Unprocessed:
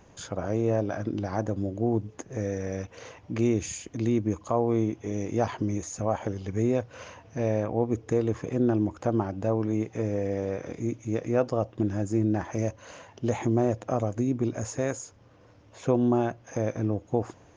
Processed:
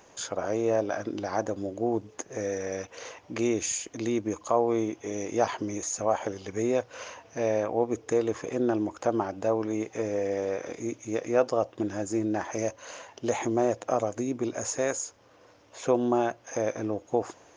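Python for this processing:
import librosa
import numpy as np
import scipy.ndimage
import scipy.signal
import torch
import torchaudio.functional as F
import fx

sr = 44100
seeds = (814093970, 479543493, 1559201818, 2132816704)

y = fx.bass_treble(x, sr, bass_db=-15, treble_db=4)
y = y * librosa.db_to_amplitude(3.0)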